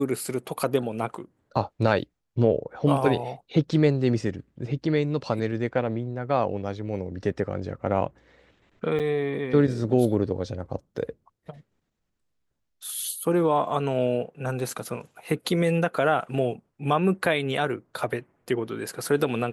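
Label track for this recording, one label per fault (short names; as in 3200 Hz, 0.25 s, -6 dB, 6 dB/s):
8.990000	9.000000	gap 7.5 ms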